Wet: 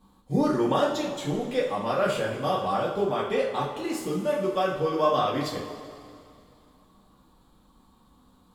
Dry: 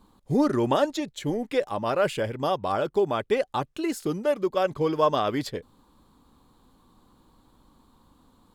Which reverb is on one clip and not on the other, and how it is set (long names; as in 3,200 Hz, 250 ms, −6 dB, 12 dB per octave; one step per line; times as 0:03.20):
coupled-rooms reverb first 0.42 s, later 2.5 s, from −14 dB, DRR −5 dB
level −6 dB